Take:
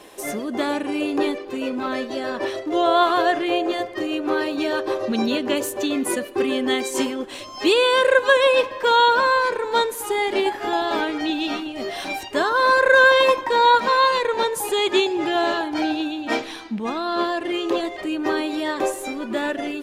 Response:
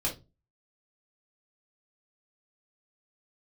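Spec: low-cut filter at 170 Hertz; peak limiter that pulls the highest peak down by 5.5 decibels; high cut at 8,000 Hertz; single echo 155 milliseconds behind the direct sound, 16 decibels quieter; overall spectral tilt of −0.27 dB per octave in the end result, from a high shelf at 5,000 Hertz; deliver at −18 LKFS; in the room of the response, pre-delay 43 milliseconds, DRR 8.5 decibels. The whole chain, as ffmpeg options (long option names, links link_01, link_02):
-filter_complex "[0:a]highpass=170,lowpass=8000,highshelf=frequency=5000:gain=-3.5,alimiter=limit=-10dB:level=0:latency=1,aecho=1:1:155:0.158,asplit=2[link_01][link_02];[1:a]atrim=start_sample=2205,adelay=43[link_03];[link_02][link_03]afir=irnorm=-1:irlink=0,volume=-15dB[link_04];[link_01][link_04]amix=inputs=2:normalize=0,volume=3dB"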